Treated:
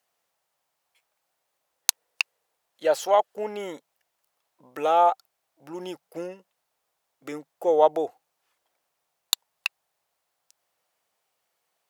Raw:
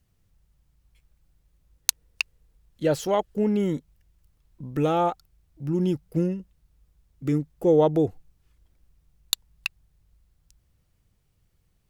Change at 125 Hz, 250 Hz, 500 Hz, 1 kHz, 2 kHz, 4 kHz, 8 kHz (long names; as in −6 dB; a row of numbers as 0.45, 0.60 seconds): −24.0, −13.0, 0.0, +6.0, +1.5, +1.5, +1.0 decibels